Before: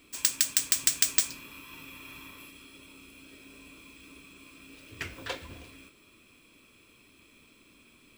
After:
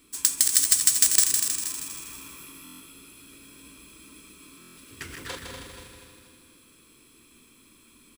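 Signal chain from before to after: backward echo that repeats 121 ms, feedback 65%, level -5 dB; fifteen-band graphic EQ 100 Hz -5 dB, 630 Hz -9 dB, 2.5 kHz -7 dB, 10 kHz +8 dB; on a send: feedback delay 158 ms, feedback 56%, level -6 dB; on the sum: buffer glitch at 2.64/4.60 s, samples 1024, times 6; trim +1 dB

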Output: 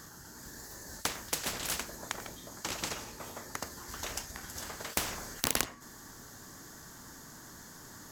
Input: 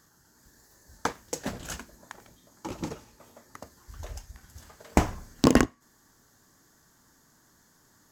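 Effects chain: spectrum-flattening compressor 4:1; trim -2.5 dB

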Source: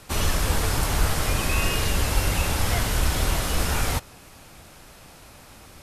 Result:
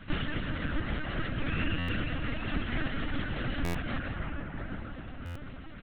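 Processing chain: low-pass 1.8 kHz 6 dB/octave; algorithmic reverb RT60 4.3 s, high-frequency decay 0.35×, pre-delay 70 ms, DRR 0 dB; compression 2.5:1, threshold -28 dBFS, peak gain reduction 10.5 dB; reverb removal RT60 0.86 s; resonant low shelf 220 Hz -8 dB, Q 3; comb of notches 1.2 kHz; LPC vocoder at 8 kHz pitch kept; high-order bell 620 Hz -11.5 dB; delay 166 ms -11 dB; buffer glitch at 1.78/3.64/5.25 s, samples 512, times 8; trim +6.5 dB

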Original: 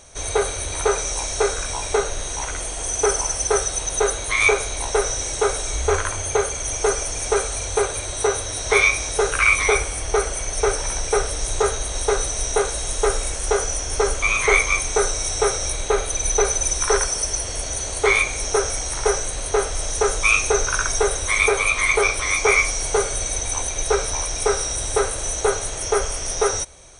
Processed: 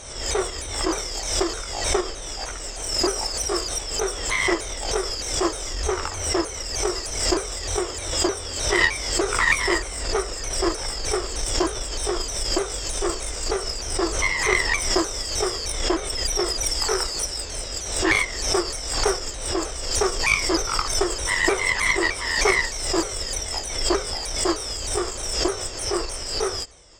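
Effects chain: sawtooth pitch modulation -4 st, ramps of 307 ms; Chebyshev shaper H 2 -15 dB, 3 -19 dB, 6 -37 dB, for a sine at -4.5 dBFS; swell ahead of each attack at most 56 dB/s

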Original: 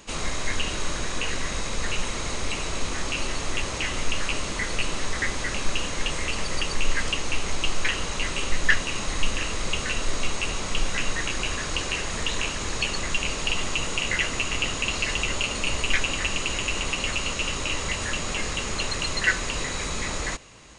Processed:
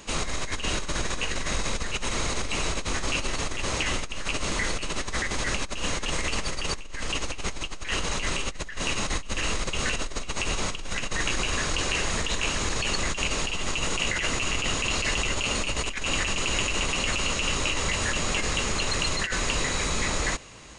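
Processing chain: compressor with a negative ratio -27 dBFS, ratio -1

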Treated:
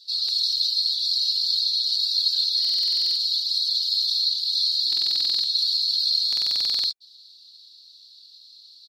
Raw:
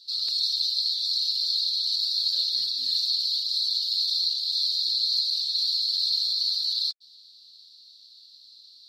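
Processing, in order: comb 2.6 ms, depth 88%; buffer glitch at 2.60/4.88/6.28 s, samples 2048, times 11

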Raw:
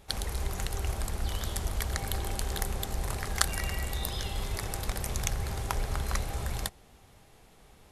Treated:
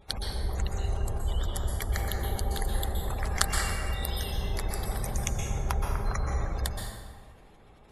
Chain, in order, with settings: spectral gate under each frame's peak -25 dB strong; plate-style reverb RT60 1.6 s, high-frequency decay 0.6×, pre-delay 110 ms, DRR 0.5 dB

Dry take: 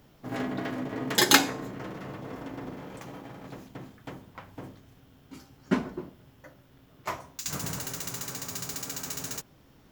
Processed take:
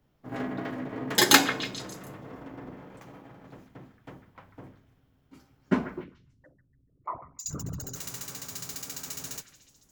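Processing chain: 6.04–7.96 s: resonances exaggerated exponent 3; repeats whose band climbs or falls 145 ms, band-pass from 1.7 kHz, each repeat 0.7 oct, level -9 dB; three bands expanded up and down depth 40%; trim -2.5 dB

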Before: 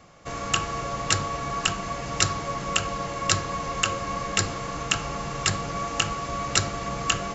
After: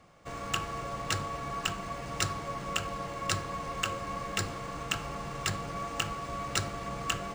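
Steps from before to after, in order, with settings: decimation joined by straight lines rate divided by 3×; trim -6.5 dB

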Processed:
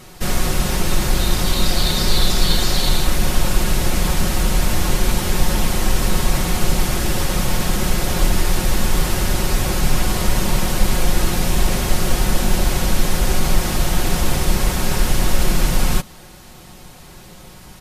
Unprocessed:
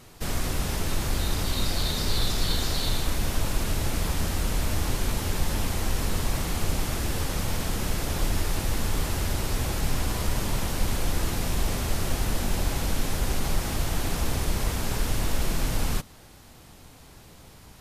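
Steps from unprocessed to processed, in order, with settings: comb 5.5 ms, depth 50%; trim +8 dB

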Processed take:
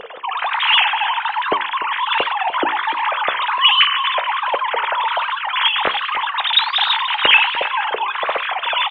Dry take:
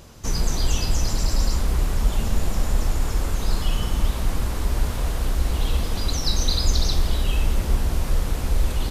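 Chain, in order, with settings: formants replaced by sine waves; flange 1.3 Hz, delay 9.3 ms, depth 9.3 ms, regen +78%; delay 296 ms -15.5 dB; trim +5 dB

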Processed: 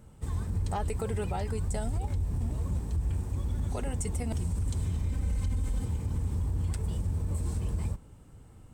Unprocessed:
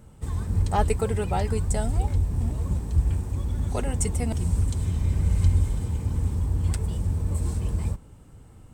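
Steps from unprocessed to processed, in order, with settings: 5.10–5.85 s: comb 3.9 ms, depth 73%; peak limiter -19.5 dBFS, peak gain reduction 10.5 dB; trim -3.5 dB

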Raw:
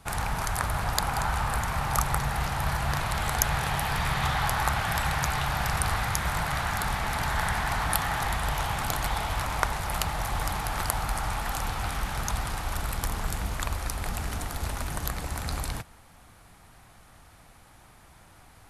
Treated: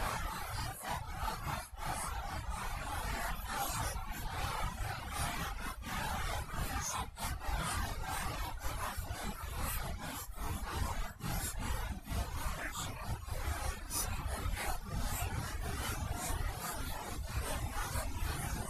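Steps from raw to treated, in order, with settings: compressor with a negative ratio -31 dBFS, ratio -0.5; Paulstretch 4.4×, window 0.05 s, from 10.72 s; reverb removal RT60 1 s; trim -6 dB

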